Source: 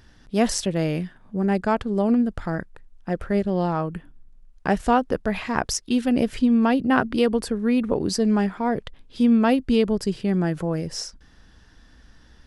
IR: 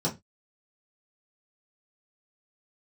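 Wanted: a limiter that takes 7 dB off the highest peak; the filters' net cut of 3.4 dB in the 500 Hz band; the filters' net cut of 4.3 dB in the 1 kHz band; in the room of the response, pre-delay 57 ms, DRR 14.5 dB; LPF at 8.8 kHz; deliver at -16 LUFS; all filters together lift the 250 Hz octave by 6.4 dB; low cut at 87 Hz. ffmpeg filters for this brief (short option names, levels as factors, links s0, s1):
-filter_complex "[0:a]highpass=87,lowpass=8800,equalizer=f=250:t=o:g=8.5,equalizer=f=500:t=o:g=-6,equalizer=f=1000:t=o:g=-4,alimiter=limit=0.266:level=0:latency=1,asplit=2[s0][s1];[1:a]atrim=start_sample=2205,adelay=57[s2];[s1][s2]afir=irnorm=-1:irlink=0,volume=0.0708[s3];[s0][s3]amix=inputs=2:normalize=0,volume=1.58"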